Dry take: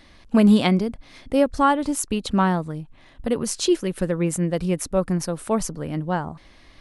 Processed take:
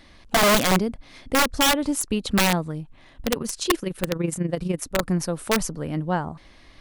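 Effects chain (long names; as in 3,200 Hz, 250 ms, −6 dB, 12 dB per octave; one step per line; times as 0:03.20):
0:03.29–0:05.03: amplitude modulation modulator 24 Hz, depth 50%
wrap-around overflow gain 12.5 dB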